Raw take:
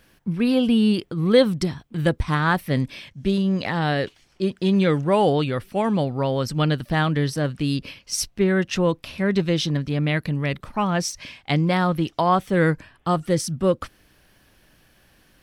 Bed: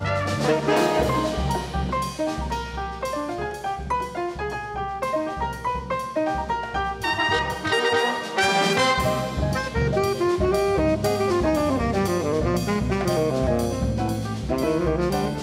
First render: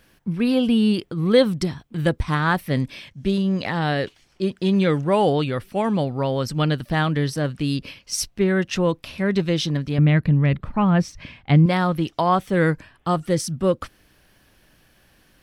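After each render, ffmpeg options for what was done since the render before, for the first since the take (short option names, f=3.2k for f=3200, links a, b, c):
-filter_complex "[0:a]asettb=1/sr,asplit=3[a][b][c];[a]atrim=end=9.984[d];[b]atrim=start=9.98:end=11.66,asetpts=PTS-STARTPTS,afade=t=in:d=0.004:c=qsin,afade=t=out:st=1.676:d=0.004:c=qsin,bass=f=250:g=9,treble=f=4k:g=-14[e];[c]atrim=start=11.656[f];[d][e]acrossfade=d=0.004:c1=hsin:c2=qsin[g];[g][f]acrossfade=d=0.004:c1=qsin:c2=hsin"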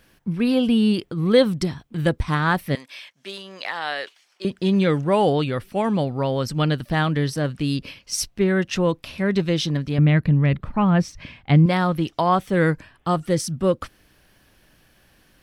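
-filter_complex "[0:a]asettb=1/sr,asplit=3[a][b][c];[a]atrim=end=2.754[d];[b]atrim=start=2.75:end=4.45,asetpts=PTS-STARTPTS,afade=t=in:d=0.004:c=qsin,afade=t=out:st=1.696:d=0.004:c=qsin,highpass=800[e];[c]atrim=start=4.446[f];[d][e]acrossfade=d=0.004:c1=hsin:c2=qsin[g];[g][f]acrossfade=d=0.004:c1=qsin:c2=hsin"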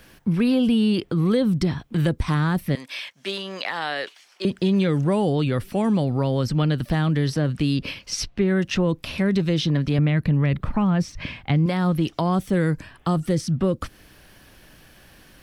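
-filter_complex "[0:a]acrossover=split=340|4800[a][b][c];[a]acompressor=threshold=-24dB:ratio=4[d];[b]acompressor=threshold=-32dB:ratio=4[e];[c]acompressor=threshold=-51dB:ratio=4[f];[d][e][f]amix=inputs=3:normalize=0,asplit=2[g][h];[h]alimiter=limit=-23dB:level=0:latency=1:release=32,volume=2dB[i];[g][i]amix=inputs=2:normalize=0"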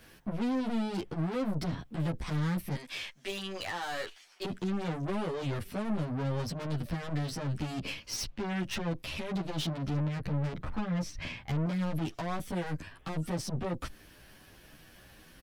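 -filter_complex "[0:a]aeval=exprs='(tanh(25.1*val(0)+0.5)-tanh(0.5))/25.1':c=same,asplit=2[a][b];[b]adelay=10.3,afreqshift=2.5[c];[a][c]amix=inputs=2:normalize=1"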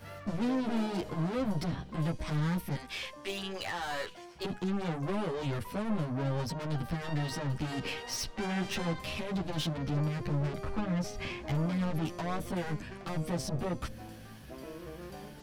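-filter_complex "[1:a]volume=-22.5dB[a];[0:a][a]amix=inputs=2:normalize=0"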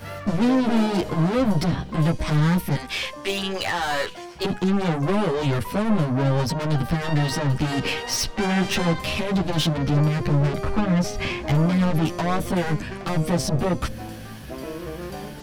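-af "volume=11.5dB"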